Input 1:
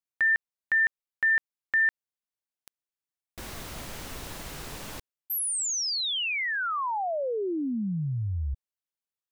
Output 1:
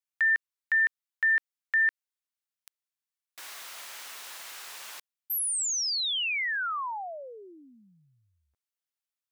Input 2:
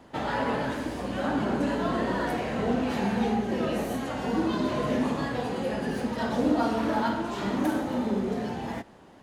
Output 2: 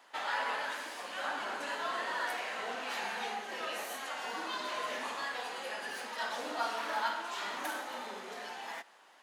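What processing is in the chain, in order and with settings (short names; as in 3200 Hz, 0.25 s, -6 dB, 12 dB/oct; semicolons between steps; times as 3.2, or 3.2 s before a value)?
HPF 1100 Hz 12 dB/oct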